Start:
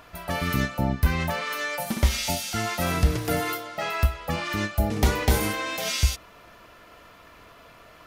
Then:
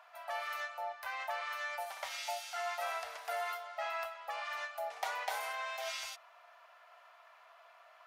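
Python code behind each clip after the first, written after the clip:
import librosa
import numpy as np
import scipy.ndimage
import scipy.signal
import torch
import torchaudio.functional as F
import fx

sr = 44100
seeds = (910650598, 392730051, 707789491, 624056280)

y = scipy.signal.sosfilt(scipy.signal.ellip(4, 1.0, 60, 680.0, 'highpass', fs=sr, output='sos'), x)
y = fx.tilt_eq(y, sr, slope=-3.0)
y = y * librosa.db_to_amplitude(-7.0)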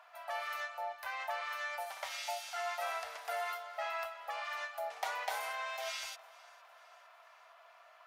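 y = fx.echo_feedback(x, sr, ms=457, feedback_pct=56, wet_db=-22.5)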